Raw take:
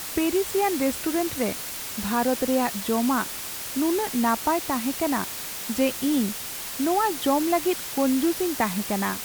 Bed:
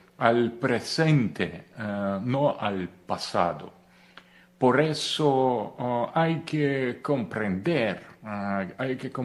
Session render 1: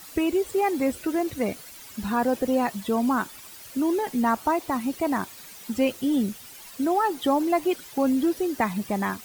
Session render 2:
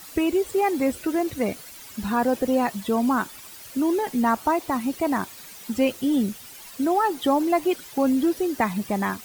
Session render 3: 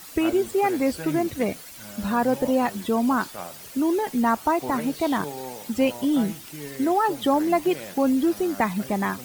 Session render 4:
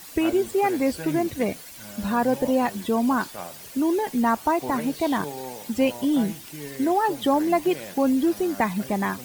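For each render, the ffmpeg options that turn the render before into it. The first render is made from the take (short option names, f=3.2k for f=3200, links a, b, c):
-af "afftdn=nr=13:nf=-34"
-af "volume=1.5dB"
-filter_complex "[1:a]volume=-13dB[a];[0:a][a]amix=inputs=2:normalize=0"
-af "bandreject=f=1.3k:w=14"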